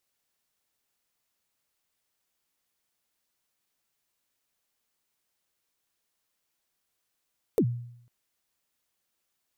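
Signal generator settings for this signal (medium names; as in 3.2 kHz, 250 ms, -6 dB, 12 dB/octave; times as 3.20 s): kick drum length 0.50 s, from 510 Hz, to 120 Hz, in 69 ms, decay 0.71 s, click on, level -17 dB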